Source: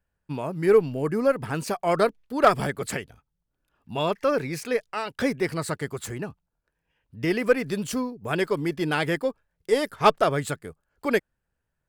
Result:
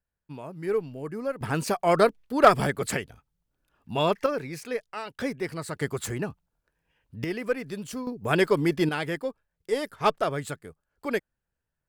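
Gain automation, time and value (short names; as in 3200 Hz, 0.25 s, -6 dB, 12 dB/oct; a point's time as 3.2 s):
-9 dB
from 1.41 s +1.5 dB
from 4.26 s -5.5 dB
from 5.76 s +2 dB
from 7.24 s -7 dB
from 8.07 s +3 dB
from 8.89 s -5 dB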